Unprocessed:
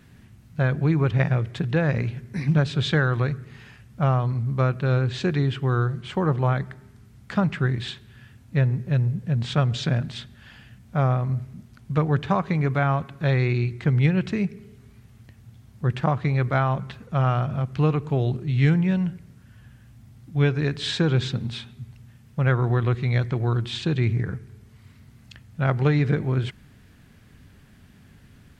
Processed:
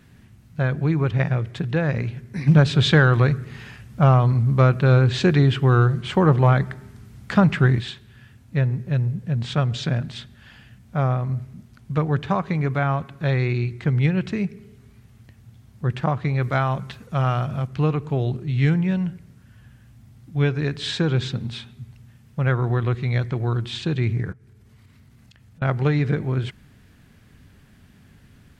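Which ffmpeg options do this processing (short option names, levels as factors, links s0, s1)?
-filter_complex "[0:a]asplit=3[s0][s1][s2];[s0]afade=t=out:st=2.46:d=0.02[s3];[s1]acontrast=64,afade=t=in:st=2.46:d=0.02,afade=t=out:st=7.79:d=0.02[s4];[s2]afade=t=in:st=7.79:d=0.02[s5];[s3][s4][s5]amix=inputs=3:normalize=0,asettb=1/sr,asplit=3[s6][s7][s8];[s6]atrim=end=16.424[s9];[s7]atrim=start=16.42:end=17.67,asetpts=PTS-STARTPTS,afade=t=in:d=0.004:c=qsin,afade=t=out:st=1.246:d=0.004:c=qsin,highshelf=f=3600:g=8[s10];[s8]atrim=start=17.666[s11];[s9][s10]acrossfade=d=0.004:c1=hsin:c2=qsin[s12];[s12][s11]acrossfade=d=0.004:c1=qsin:c2=hsin,asettb=1/sr,asplit=3[s13][s14][s15];[s13]atrim=end=24.324[s16];[s14]atrim=start=24.32:end=25.62,asetpts=PTS-STARTPTS,afade=t=in:d=0.004:c=qsin,afade=t=out:st=1.296:d=0.004:c=qsin,acompressor=threshold=0.00447:ratio=8:attack=3.2:release=140:knee=1:detection=peak[s17];[s15]atrim=start=25.616[s18];[s16][s17]acrossfade=d=0.004:c1=hsin:c2=qsin[s19];[s19][s18]acrossfade=d=0.004:c1=qsin:c2=hsin"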